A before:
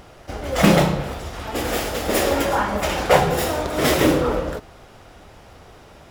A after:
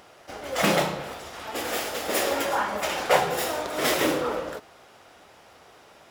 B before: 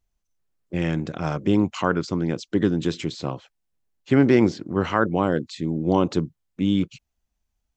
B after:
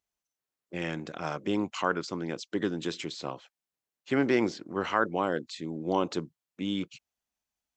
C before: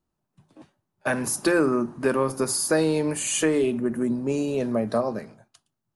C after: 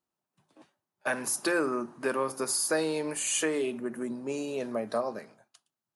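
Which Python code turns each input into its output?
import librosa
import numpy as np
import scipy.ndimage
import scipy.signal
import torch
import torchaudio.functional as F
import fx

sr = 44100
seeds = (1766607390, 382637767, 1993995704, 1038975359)

y = fx.highpass(x, sr, hz=530.0, slope=6)
y = F.gain(torch.from_numpy(y), -3.0).numpy()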